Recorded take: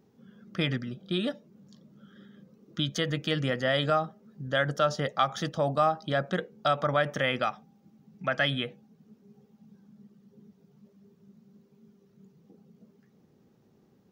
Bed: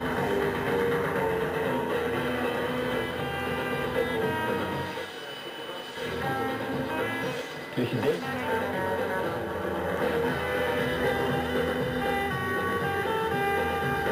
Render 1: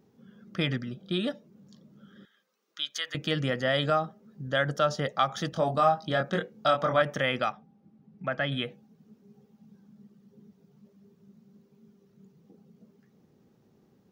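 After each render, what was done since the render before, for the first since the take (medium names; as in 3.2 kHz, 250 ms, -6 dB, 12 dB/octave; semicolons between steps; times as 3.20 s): 2.25–3.15 s: high-pass 1.3 kHz; 5.50–7.02 s: doubling 24 ms -4 dB; 7.52–8.52 s: tape spacing loss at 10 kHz 23 dB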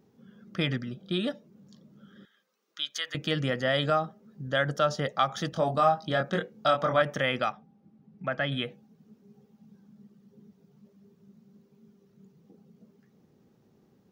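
no audible change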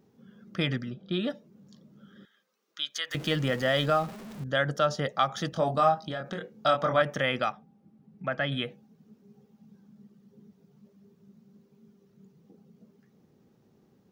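0.90–1.30 s: distance through air 100 m; 3.11–4.44 s: jump at every zero crossing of -39 dBFS; 5.94–6.54 s: compression, threshold -30 dBFS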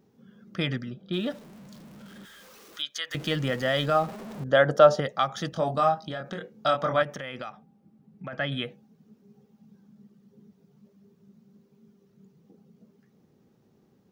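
1.13–2.82 s: jump at every zero crossing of -45.5 dBFS; 3.94–4.99 s: peaking EQ 610 Hz +4 dB -> +13 dB 2.3 oct; 7.03–8.33 s: compression 5:1, threshold -33 dBFS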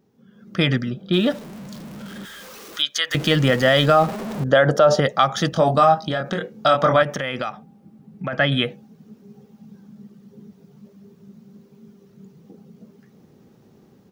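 peak limiter -16 dBFS, peak gain reduction 11 dB; level rider gain up to 11 dB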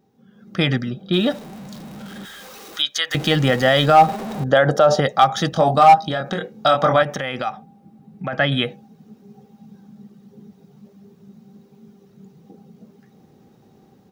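small resonant body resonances 780/3800 Hz, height 11 dB, ringing for 70 ms; hard clipper -4.5 dBFS, distortion -19 dB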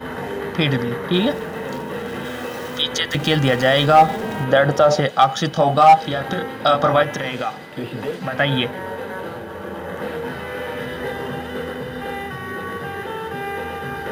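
add bed -0.5 dB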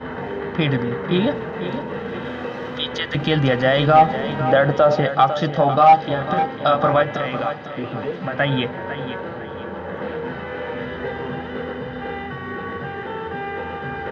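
distance through air 230 m; feedback delay 501 ms, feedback 37%, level -11 dB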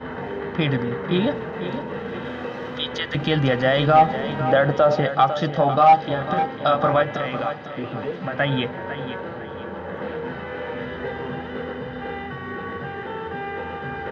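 trim -2 dB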